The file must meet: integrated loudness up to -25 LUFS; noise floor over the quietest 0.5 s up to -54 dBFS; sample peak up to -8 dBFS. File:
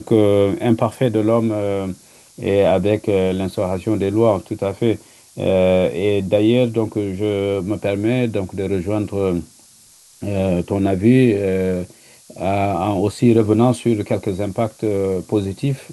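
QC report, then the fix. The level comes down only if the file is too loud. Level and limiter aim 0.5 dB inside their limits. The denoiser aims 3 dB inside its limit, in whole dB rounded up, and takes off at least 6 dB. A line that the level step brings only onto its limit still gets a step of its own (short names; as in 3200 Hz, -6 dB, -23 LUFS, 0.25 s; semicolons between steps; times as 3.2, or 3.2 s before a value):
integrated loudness -18.5 LUFS: fail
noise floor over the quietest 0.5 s -48 dBFS: fail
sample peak -3.0 dBFS: fail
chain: gain -7 dB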